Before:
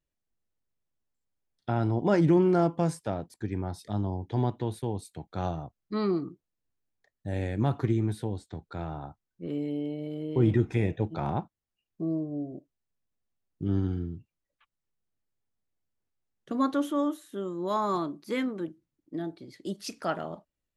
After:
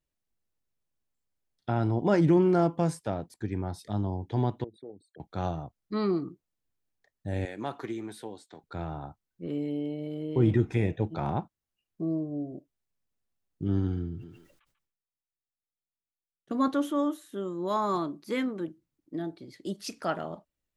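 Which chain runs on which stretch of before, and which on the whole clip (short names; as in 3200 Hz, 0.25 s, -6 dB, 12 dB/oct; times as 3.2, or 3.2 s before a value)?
4.64–5.2 formant sharpening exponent 3 + BPF 400–2600 Hz + compressor 2:1, threshold -44 dBFS
7.45–8.64 HPF 260 Hz + low shelf 490 Hz -7 dB
13.79–16.68 gate -54 dBFS, range -17 dB + thinning echo 0.142 s, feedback 17%, high-pass 810 Hz, level -15 dB + sustainer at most 68 dB/s
whole clip: dry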